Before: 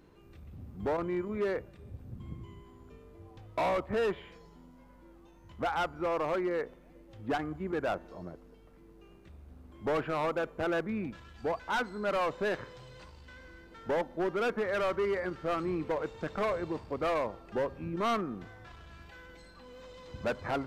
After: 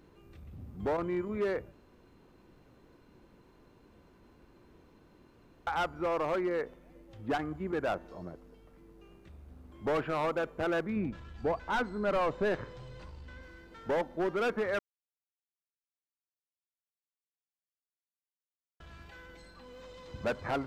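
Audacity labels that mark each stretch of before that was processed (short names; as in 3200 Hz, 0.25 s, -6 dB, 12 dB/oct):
1.720000	5.670000	room tone
10.960000	13.430000	tilt -1.5 dB/oct
14.790000	18.800000	mute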